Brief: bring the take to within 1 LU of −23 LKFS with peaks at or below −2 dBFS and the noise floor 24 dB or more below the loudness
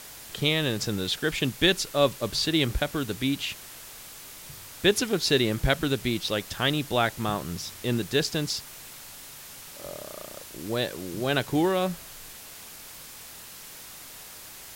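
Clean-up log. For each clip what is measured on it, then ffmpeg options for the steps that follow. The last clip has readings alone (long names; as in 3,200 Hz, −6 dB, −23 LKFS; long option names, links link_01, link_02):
background noise floor −45 dBFS; target noise floor −51 dBFS; integrated loudness −26.5 LKFS; sample peak −7.5 dBFS; target loudness −23.0 LKFS
→ -af "afftdn=noise_reduction=6:noise_floor=-45"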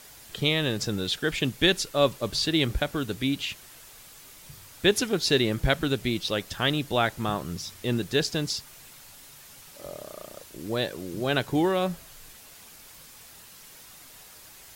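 background noise floor −49 dBFS; target noise floor −51 dBFS
→ -af "afftdn=noise_reduction=6:noise_floor=-49"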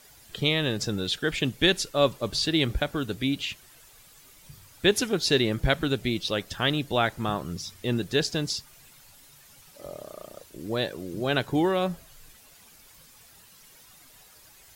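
background noise floor −54 dBFS; integrated loudness −26.5 LKFS; sample peak −7.5 dBFS; target loudness −23.0 LKFS
→ -af "volume=3.5dB"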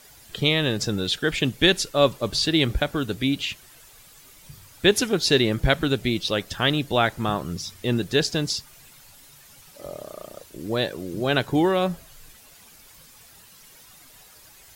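integrated loudness −23.0 LKFS; sample peak −4.0 dBFS; background noise floor −51 dBFS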